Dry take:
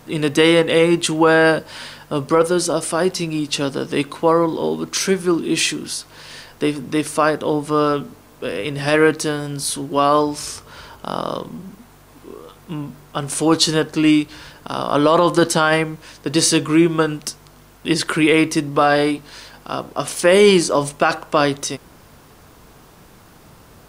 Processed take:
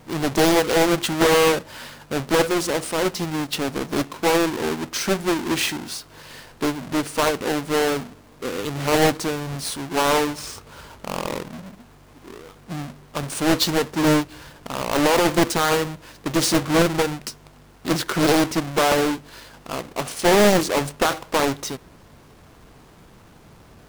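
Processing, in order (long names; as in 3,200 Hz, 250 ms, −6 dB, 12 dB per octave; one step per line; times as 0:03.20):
each half-wave held at its own peak
highs frequency-modulated by the lows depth 0.97 ms
level −7.5 dB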